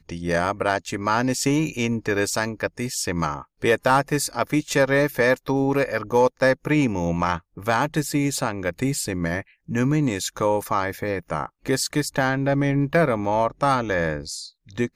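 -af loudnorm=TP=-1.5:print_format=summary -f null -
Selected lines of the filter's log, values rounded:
Input Integrated:    -22.9 LUFS
Input True Peak:      -8.2 dBTP
Input LRA:             2.6 LU
Input Threshold:     -33.0 LUFS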